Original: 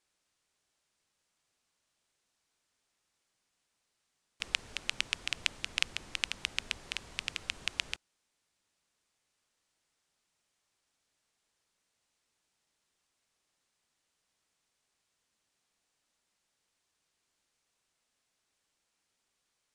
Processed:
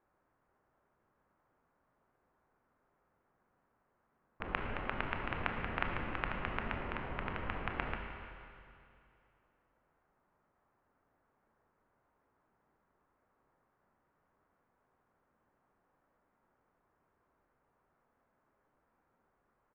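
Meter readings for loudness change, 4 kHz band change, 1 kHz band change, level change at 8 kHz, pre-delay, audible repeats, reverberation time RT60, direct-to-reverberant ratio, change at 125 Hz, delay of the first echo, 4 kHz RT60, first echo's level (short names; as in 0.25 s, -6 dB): -4.0 dB, -16.5 dB, +11.0 dB, under -30 dB, 22 ms, 1, 2.5 s, 2.5 dB, +12.0 dB, 0.306 s, 2.5 s, -18.5 dB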